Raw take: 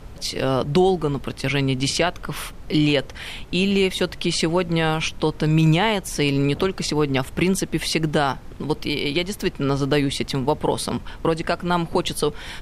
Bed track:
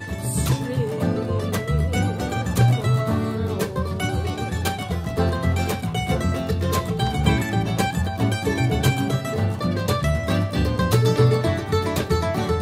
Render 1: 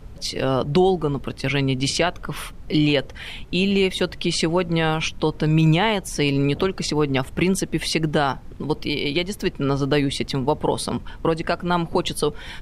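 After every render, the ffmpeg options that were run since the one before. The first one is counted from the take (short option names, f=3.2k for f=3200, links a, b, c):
-af "afftdn=nr=6:nf=-38"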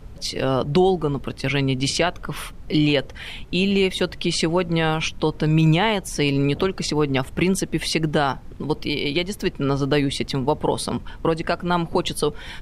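-af anull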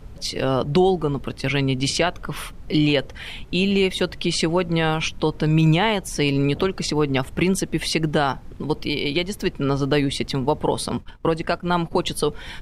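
-filter_complex "[0:a]asettb=1/sr,asplit=3[a][b][c];[a]atrim=end=10.884[d];[b]atrim=start=10.88:end=12.14,asetpts=PTS-STARTPTS,afade=t=in:d=0.004:c=qsin,afade=t=out:st=1.256:d=0.004:c=qsin,agate=range=-33dB:threshold=-28dB:ratio=3:release=100:detection=peak[e];[c]atrim=start=12.136[f];[d][e]acrossfade=d=0.004:c1=hsin:c2=qsin[g];[g][f]acrossfade=d=0.004:c1=qsin:c2=hsin"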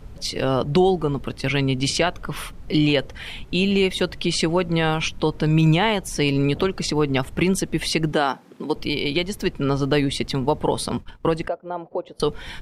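-filter_complex "[0:a]asettb=1/sr,asplit=3[a][b][c];[a]atrim=end=8.124[d];[b]atrim=start=8.12:end=8.76,asetpts=PTS-STARTPTS,afade=t=in:d=0.004:c=qsin,afade=t=out:st=0.636:d=0.004:c=qsin,highpass=f=200:w=0.5412,highpass=f=200:w=1.3066[e];[c]atrim=start=8.756[f];[d][e]acrossfade=d=0.004:c1=hsin:c2=qsin[g];[g][f]acrossfade=d=0.004:c1=qsin:c2=hsin,asettb=1/sr,asplit=3[h][i][j];[h]atrim=end=11.484[k];[i]atrim=start=11.48:end=12.2,asetpts=PTS-STARTPTS,afade=t=in:d=0.004:c=qsin,afade=t=out:st=0.716:d=0.004:c=qsin,bandpass=f=550:t=q:w=2.7[l];[j]atrim=start=12.196[m];[k][l]acrossfade=d=0.004:c1=hsin:c2=qsin[n];[n][m]acrossfade=d=0.004:c1=qsin:c2=hsin"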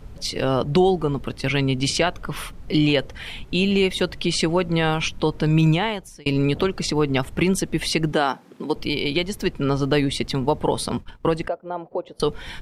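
-filter_complex "[0:a]asplit=2[a][b];[a]atrim=end=6.26,asetpts=PTS-STARTPTS,afade=t=out:st=5.63:d=0.63[c];[b]atrim=start=6.26,asetpts=PTS-STARTPTS,afade=t=in:d=0.004:c=hsin[d];[c][d]concat=n=2:v=0:a=1"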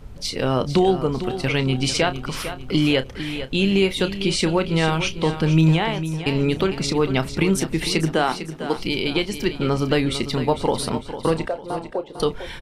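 -filter_complex "[0:a]asplit=2[a][b];[b]adelay=31,volume=-12dB[c];[a][c]amix=inputs=2:normalize=0,aecho=1:1:451|902|1353|1804:0.282|0.113|0.0451|0.018"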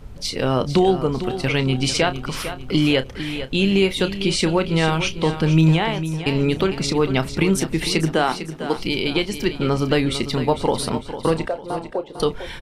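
-af "volume=1dB"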